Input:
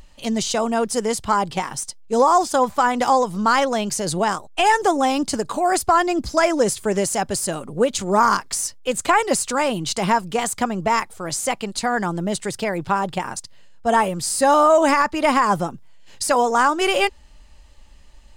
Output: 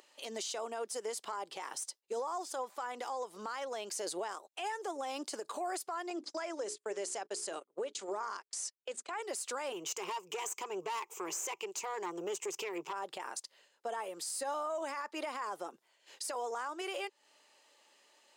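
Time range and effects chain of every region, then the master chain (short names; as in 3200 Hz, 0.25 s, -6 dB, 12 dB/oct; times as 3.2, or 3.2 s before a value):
6.1–9.22 LPF 8600 Hz 24 dB/oct + notches 60/120/180/240/300/360/420 Hz + gate -30 dBFS, range -35 dB
9.72–12.93 ripple EQ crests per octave 0.74, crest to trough 16 dB + upward compressor, threshold -22 dBFS + tube stage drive 17 dB, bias 0.45
whole clip: Chebyshev high-pass 380 Hz, order 3; compressor 6:1, threshold -28 dBFS; limiter -23.5 dBFS; gain -6 dB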